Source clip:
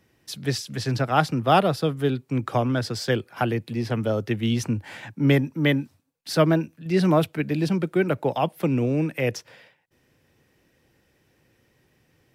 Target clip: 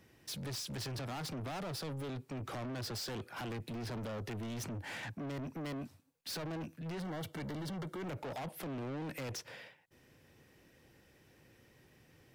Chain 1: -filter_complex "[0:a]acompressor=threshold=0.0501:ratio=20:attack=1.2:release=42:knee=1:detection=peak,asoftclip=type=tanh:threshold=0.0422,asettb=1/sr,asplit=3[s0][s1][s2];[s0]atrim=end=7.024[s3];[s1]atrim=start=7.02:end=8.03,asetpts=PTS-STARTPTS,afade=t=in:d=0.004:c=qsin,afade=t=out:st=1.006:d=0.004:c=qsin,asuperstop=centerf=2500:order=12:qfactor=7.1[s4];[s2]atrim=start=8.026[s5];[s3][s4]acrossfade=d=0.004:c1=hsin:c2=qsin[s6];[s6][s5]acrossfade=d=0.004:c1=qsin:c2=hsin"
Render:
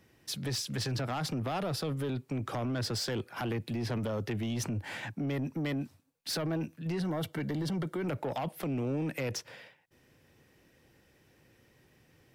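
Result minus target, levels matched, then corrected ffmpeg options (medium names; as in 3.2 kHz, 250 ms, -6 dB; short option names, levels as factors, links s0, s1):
saturation: distortion -10 dB
-filter_complex "[0:a]acompressor=threshold=0.0501:ratio=20:attack=1.2:release=42:knee=1:detection=peak,asoftclip=type=tanh:threshold=0.0112,asettb=1/sr,asplit=3[s0][s1][s2];[s0]atrim=end=7.024[s3];[s1]atrim=start=7.02:end=8.03,asetpts=PTS-STARTPTS,afade=t=in:d=0.004:c=qsin,afade=t=out:st=1.006:d=0.004:c=qsin,asuperstop=centerf=2500:order=12:qfactor=7.1[s4];[s2]atrim=start=8.026[s5];[s3][s4]acrossfade=d=0.004:c1=hsin:c2=qsin[s6];[s6][s5]acrossfade=d=0.004:c1=qsin:c2=hsin"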